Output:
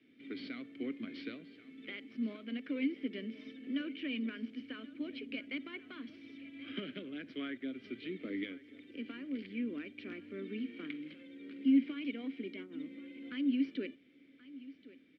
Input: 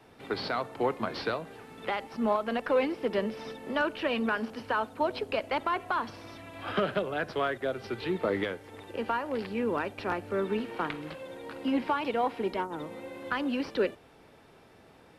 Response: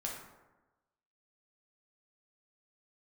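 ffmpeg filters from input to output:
-filter_complex "[0:a]asettb=1/sr,asplit=3[s0][s1][s2];[s0]atrim=end=7.224[s3];[s1]atrim=start=7.22:end=7.63,asetpts=PTS-STARTPTS,afade=t=in:d=0.004:c=qsin,afade=t=out:st=0.406:d=0.004:c=qsin,adynamicequalizer=threshold=0.00891:dfrequency=1200:dqfactor=0.97:tfrequency=1200:tqfactor=0.97:attack=5:release=100:ratio=0.375:range=2.5:mode=boostabove:tftype=bell[s4];[s2]atrim=start=7.626[s5];[s3][s4]acrossfade=d=0.004:c1=hsin:c2=qsin[s6];[s6][s5]acrossfade=d=0.004:c1=qsin:c2=hsin,asplit=3[s7][s8][s9];[s7]bandpass=f=270:t=q:w=8,volume=1[s10];[s8]bandpass=f=2290:t=q:w=8,volume=0.501[s11];[s9]bandpass=f=3010:t=q:w=8,volume=0.355[s12];[s10][s11][s12]amix=inputs=3:normalize=0,aecho=1:1:1079:0.126,volume=1.41"

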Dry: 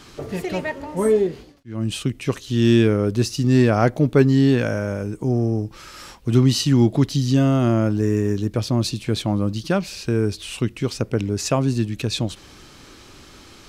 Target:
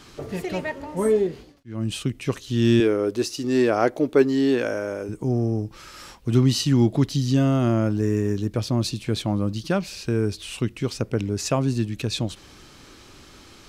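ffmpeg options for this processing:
-filter_complex "[0:a]asettb=1/sr,asplit=3[s0][s1][s2];[s0]atrim=end=2.804[s3];[s1]atrim=start=2.8:end=5.09,asetpts=PTS-STARTPTS,afade=t=in:d=0.004:c=qsin,afade=t=out:st=2.286:d=0.004:c=qsin,lowshelf=f=230:t=q:w=1.5:g=-11.5[s4];[s2]atrim=start=5.086[s5];[s3][s4]acrossfade=d=0.004:c1=hsin:c2=qsin[s6];[s6][s5]acrossfade=d=0.004:c1=qsin:c2=hsin,volume=0.75"

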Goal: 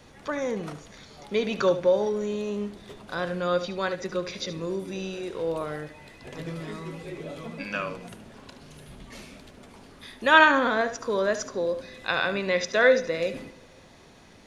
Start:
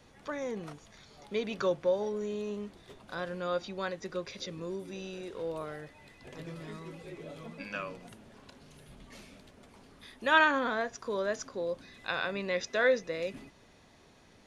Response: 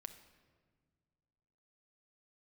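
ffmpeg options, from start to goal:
-filter_complex "[0:a]asplit=2[s0][s1];[1:a]atrim=start_sample=2205,adelay=73[s2];[s1][s2]afir=irnorm=-1:irlink=0,volume=0.473[s3];[s0][s3]amix=inputs=2:normalize=0,volume=2.24"

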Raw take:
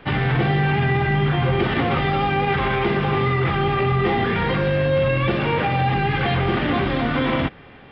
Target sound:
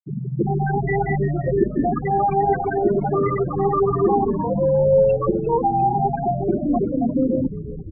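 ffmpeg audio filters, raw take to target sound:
-filter_complex "[0:a]afftfilt=real='re*gte(hypot(re,im),0.447)':imag='im*gte(hypot(re,im),0.447)':win_size=1024:overlap=0.75,acrossover=split=3000[s0][s1];[s1]acompressor=threshold=0.00126:ratio=4:attack=1:release=60[s2];[s0][s2]amix=inputs=2:normalize=0,highpass=f=180:w=0.5412,highpass=f=180:w=1.3066,highshelf=f=3500:g=-6,asplit=8[s3][s4][s5][s6][s7][s8][s9][s10];[s4]adelay=349,afreqshift=-100,volume=0.237[s11];[s5]adelay=698,afreqshift=-200,volume=0.15[s12];[s6]adelay=1047,afreqshift=-300,volume=0.0944[s13];[s7]adelay=1396,afreqshift=-400,volume=0.0596[s14];[s8]adelay=1745,afreqshift=-500,volume=0.0372[s15];[s9]adelay=2094,afreqshift=-600,volume=0.0234[s16];[s10]adelay=2443,afreqshift=-700,volume=0.0148[s17];[s3][s11][s12][s13][s14][s15][s16][s17]amix=inputs=8:normalize=0,volume=1.88"

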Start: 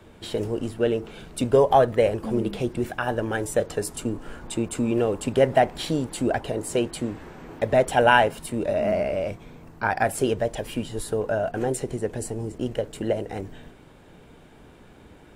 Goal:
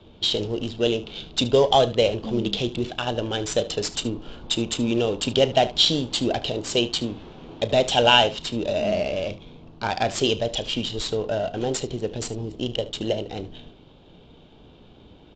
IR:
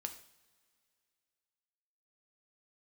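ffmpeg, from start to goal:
-filter_complex "[0:a]highshelf=f=2500:t=q:w=3:g=10.5,adynamicsmooth=sensitivity=5:basefreq=1800,asplit=2[s0][s1];[s1]aecho=0:1:34|74:0.15|0.141[s2];[s0][s2]amix=inputs=2:normalize=0,aresample=16000,aresample=44100"

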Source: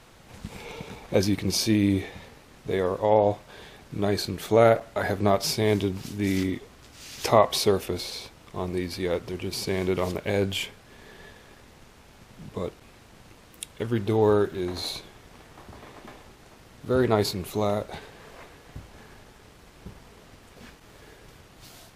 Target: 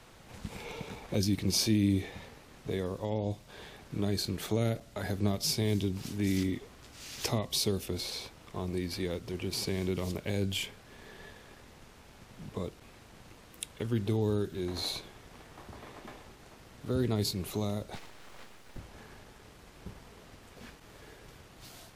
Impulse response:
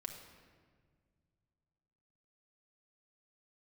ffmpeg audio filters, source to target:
-filter_complex "[0:a]acrossover=split=300|3000[s0][s1][s2];[s1]acompressor=threshold=0.0178:ratio=10[s3];[s0][s3][s2]amix=inputs=3:normalize=0,asettb=1/sr,asplit=3[s4][s5][s6];[s4]atrim=end=17.954[s7];[s5]atrim=start=17.95:end=18.78,asetpts=PTS-STARTPTS,afade=t=in:d=0.004:c=qsin,afade=t=out:st=0.826:d=0.004:c=qsin,aeval=exprs='abs(val(0))':c=same[s8];[s6]atrim=start=18.776[s9];[s7][s8]acrossfade=d=0.004:c1=hsin:c2=qsin[s10];[s10][s9]acrossfade=d=0.004:c1=qsin:c2=hsin,volume=0.75"

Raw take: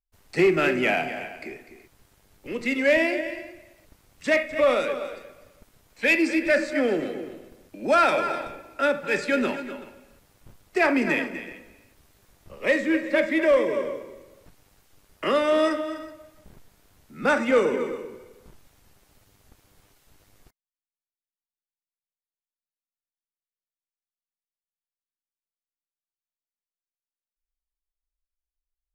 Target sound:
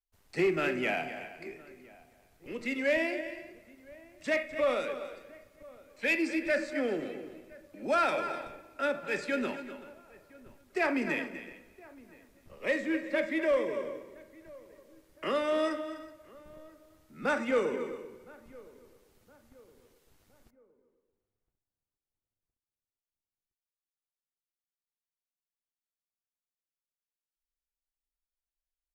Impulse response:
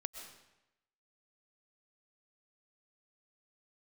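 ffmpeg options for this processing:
-filter_complex "[0:a]asplit=2[s0][s1];[s1]adelay=1015,lowpass=f=1400:p=1,volume=0.0794,asplit=2[s2][s3];[s3]adelay=1015,lowpass=f=1400:p=1,volume=0.47,asplit=2[s4][s5];[s5]adelay=1015,lowpass=f=1400:p=1,volume=0.47[s6];[s0][s2][s4][s6]amix=inputs=4:normalize=0,volume=0.398"

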